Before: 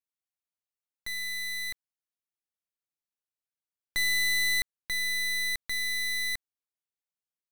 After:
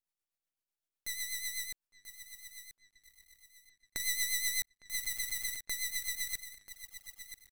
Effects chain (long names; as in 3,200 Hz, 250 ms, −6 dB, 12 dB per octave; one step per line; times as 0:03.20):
high-shelf EQ 8,500 Hz +6 dB
in parallel at −3 dB: brickwall limiter −27 dBFS, peak gain reduction 7 dB
0:01.65–0:04.00: on the sum: downward compressor, threshold −29 dBFS, peak gain reduction 7 dB
delay with a low-pass on its return 857 ms, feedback 72%, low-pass 3,600 Hz, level −18.5 dB
rotating-speaker cabinet horn 8 Hz
on a send: repeating echo 986 ms, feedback 29%, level −10.5 dB
on the sum: half-wave rectification
level −1 dB